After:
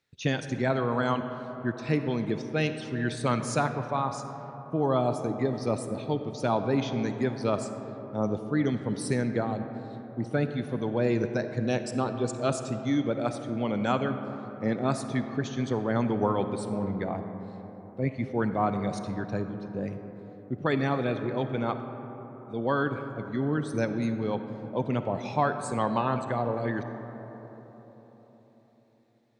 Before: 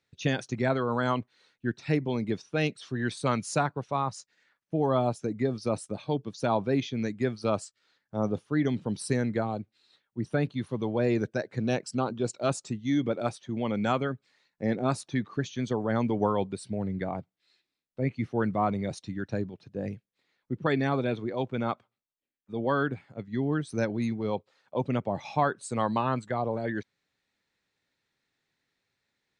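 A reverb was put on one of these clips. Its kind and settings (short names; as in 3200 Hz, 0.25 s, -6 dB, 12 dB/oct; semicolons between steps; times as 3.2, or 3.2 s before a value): digital reverb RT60 4.4 s, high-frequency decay 0.3×, pre-delay 15 ms, DRR 8 dB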